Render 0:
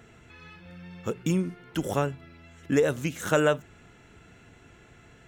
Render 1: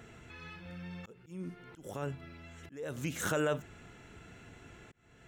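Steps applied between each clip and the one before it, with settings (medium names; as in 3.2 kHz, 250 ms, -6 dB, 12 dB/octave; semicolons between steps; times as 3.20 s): peak limiter -22 dBFS, peak gain reduction 12 dB; slow attack 507 ms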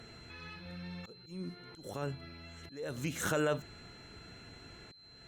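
whistle 4.1 kHz -56 dBFS; Opus 64 kbps 48 kHz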